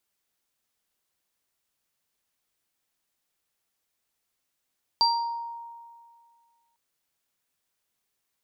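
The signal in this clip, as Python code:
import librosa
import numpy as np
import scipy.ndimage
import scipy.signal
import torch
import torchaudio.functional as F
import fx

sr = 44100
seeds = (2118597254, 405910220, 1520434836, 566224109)

y = fx.additive_free(sr, length_s=1.75, hz=933.0, level_db=-20.0, upper_db=(3.0,), decay_s=2.02, upper_decays_s=(0.5,), upper_hz=(4710.0,))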